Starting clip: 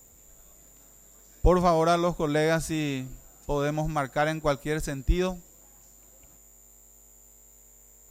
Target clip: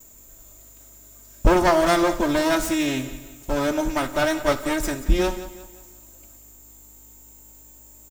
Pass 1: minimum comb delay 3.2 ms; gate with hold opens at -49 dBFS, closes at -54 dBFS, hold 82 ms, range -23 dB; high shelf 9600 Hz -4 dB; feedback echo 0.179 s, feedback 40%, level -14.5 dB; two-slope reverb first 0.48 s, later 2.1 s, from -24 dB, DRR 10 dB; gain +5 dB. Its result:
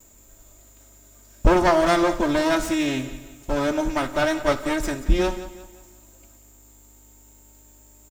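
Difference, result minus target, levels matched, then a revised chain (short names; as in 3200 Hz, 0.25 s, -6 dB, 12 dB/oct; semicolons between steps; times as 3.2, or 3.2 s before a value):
8000 Hz band -3.0 dB
minimum comb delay 3.2 ms; gate with hold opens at -49 dBFS, closes at -54 dBFS, hold 82 ms, range -23 dB; high shelf 9600 Hz +6.5 dB; feedback echo 0.179 s, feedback 40%, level -14.5 dB; two-slope reverb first 0.48 s, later 2.1 s, from -24 dB, DRR 10 dB; gain +5 dB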